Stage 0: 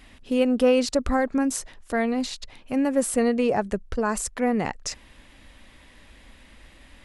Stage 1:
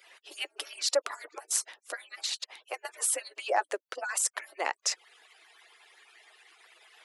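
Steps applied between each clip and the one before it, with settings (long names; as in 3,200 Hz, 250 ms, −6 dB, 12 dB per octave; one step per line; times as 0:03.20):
harmonic-percussive split with one part muted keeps percussive
Bessel high-pass filter 680 Hz, order 8
level +2.5 dB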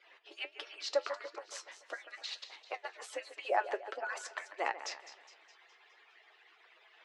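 high-frequency loss of the air 200 metres
echo with a time of its own for lows and highs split 2,800 Hz, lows 143 ms, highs 207 ms, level −13 dB
flanger 1.5 Hz, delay 8.3 ms, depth 3.7 ms, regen +63%
level +2 dB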